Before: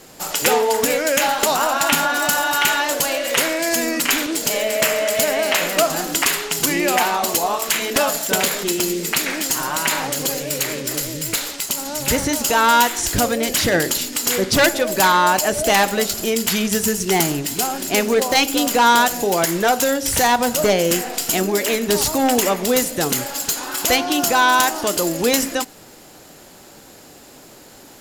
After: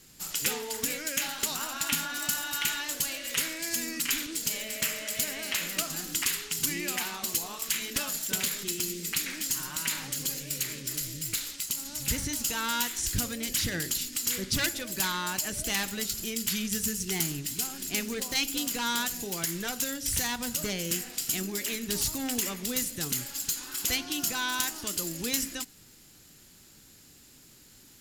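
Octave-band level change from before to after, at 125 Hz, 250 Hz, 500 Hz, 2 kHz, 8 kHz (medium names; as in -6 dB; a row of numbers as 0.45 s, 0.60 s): -9.5 dB, -13.5 dB, -22.0 dB, -13.5 dB, -8.5 dB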